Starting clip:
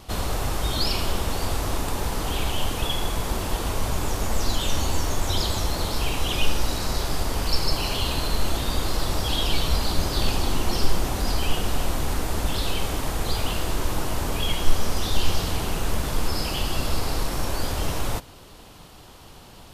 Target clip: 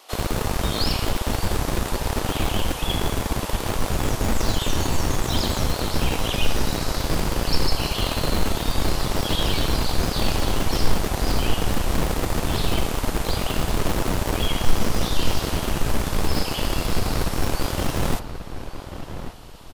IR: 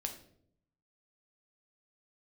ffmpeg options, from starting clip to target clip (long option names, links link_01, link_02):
-filter_complex "[0:a]bandreject=frequency=67.44:width_type=h:width=4,bandreject=frequency=134.88:width_type=h:width=4,bandreject=frequency=202.32:width_type=h:width=4,bandreject=frequency=269.76:width_type=h:width=4,bandreject=frequency=337.2:width_type=h:width=4,bandreject=frequency=404.64:width_type=h:width=4,bandreject=frequency=472.08:width_type=h:width=4,bandreject=frequency=539.52:width_type=h:width=4,bandreject=frequency=606.96:width_type=h:width=4,bandreject=frequency=674.4:width_type=h:width=4,bandreject=frequency=741.84:width_type=h:width=4,bandreject=frequency=809.28:width_type=h:width=4,bandreject=frequency=876.72:width_type=h:width=4,bandreject=frequency=944.16:width_type=h:width=4,bandreject=frequency=1011.6:width_type=h:width=4,bandreject=frequency=1079.04:width_type=h:width=4,bandreject=frequency=1146.48:width_type=h:width=4,bandreject=frequency=1213.92:width_type=h:width=4,bandreject=frequency=1281.36:width_type=h:width=4,bandreject=frequency=1348.8:width_type=h:width=4,bandreject=frequency=1416.24:width_type=h:width=4,bandreject=frequency=1483.68:width_type=h:width=4,bandreject=frequency=1551.12:width_type=h:width=4,bandreject=frequency=1618.56:width_type=h:width=4,bandreject=frequency=1686:width_type=h:width=4,bandreject=frequency=1753.44:width_type=h:width=4,bandreject=frequency=1820.88:width_type=h:width=4,acrossover=split=400[link_01][link_02];[link_01]acrusher=bits=3:mix=0:aa=0.000001[link_03];[link_03][link_02]amix=inputs=2:normalize=0,asplit=2[link_04][link_05];[link_05]adelay=1138,lowpass=frequency=2100:poles=1,volume=-10dB,asplit=2[link_06][link_07];[link_07]adelay=1138,lowpass=frequency=2100:poles=1,volume=0.3,asplit=2[link_08][link_09];[link_09]adelay=1138,lowpass=frequency=2100:poles=1,volume=0.3[link_10];[link_04][link_06][link_08][link_10]amix=inputs=4:normalize=0"